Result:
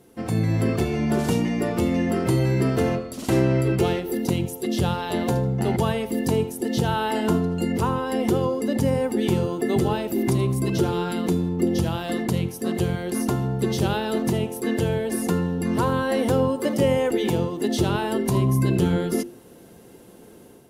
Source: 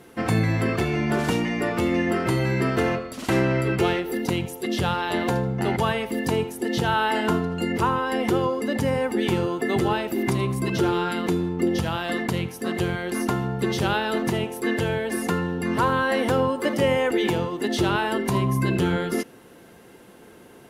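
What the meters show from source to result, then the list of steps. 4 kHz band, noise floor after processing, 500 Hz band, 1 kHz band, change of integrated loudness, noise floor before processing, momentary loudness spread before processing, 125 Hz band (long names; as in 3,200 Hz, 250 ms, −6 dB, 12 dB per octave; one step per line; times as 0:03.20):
−2.5 dB, −47 dBFS, +0.5 dB, −3.0 dB, +0.5 dB, −48 dBFS, 4 LU, +3.0 dB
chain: parametric band 1,700 Hz −10.5 dB 2.4 octaves
mains-hum notches 50/100/150/200/250/300/350 Hz
automatic gain control gain up to 6 dB
level −2 dB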